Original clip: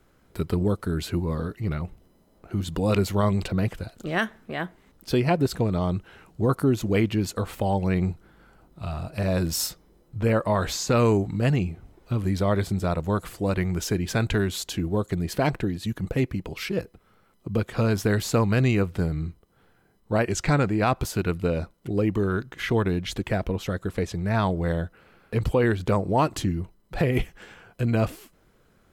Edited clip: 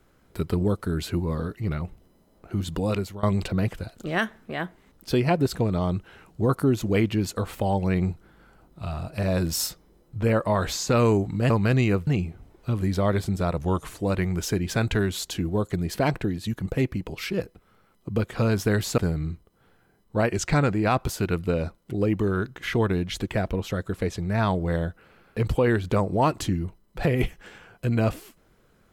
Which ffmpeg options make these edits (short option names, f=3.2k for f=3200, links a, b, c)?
-filter_complex "[0:a]asplit=7[a][b][c][d][e][f][g];[a]atrim=end=3.23,asetpts=PTS-STARTPTS,afade=t=out:st=2.74:d=0.49:silence=0.1[h];[b]atrim=start=3.23:end=11.502,asetpts=PTS-STARTPTS,afade=t=in:d=0.004:c=hsin:silence=0.1[i];[c]atrim=start=18.368:end=18.942[j];[d]atrim=start=11.498:end=13.004[k];[e]atrim=start=13:end=13.36,asetpts=PTS-STARTPTS,asetrate=39690,aresample=44100[l];[f]atrim=start=13.356:end=18.372[m];[g]atrim=start=18.938[n];[h][i]concat=n=2:v=0:a=1[o];[o][j]acrossfade=d=0.004:c1=hsin:c2=hsin[p];[p][k]acrossfade=d=0.004:c1=hsin:c2=hsin[q];[q][l]acrossfade=d=0.004:c1=hsin:c2=hsin[r];[r][m]acrossfade=d=0.004:c1=hsin:c2=hsin[s];[s][n]acrossfade=d=0.004:c1=hsin:c2=hsin"